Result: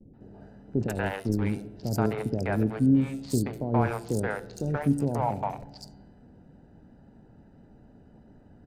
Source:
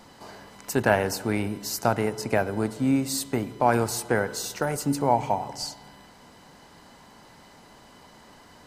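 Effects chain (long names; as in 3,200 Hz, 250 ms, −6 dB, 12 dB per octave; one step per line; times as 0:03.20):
adaptive Wiener filter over 41 samples
brickwall limiter −15 dBFS, peak gain reduction 8.5 dB
hum removal 169.9 Hz, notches 28
0:00.87–0:01.42: power curve on the samples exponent 1.4
low-shelf EQ 240 Hz +6 dB
noise gate with hold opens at −46 dBFS
three-band delay without the direct sound lows, mids, highs 130/200 ms, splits 520/4,200 Hz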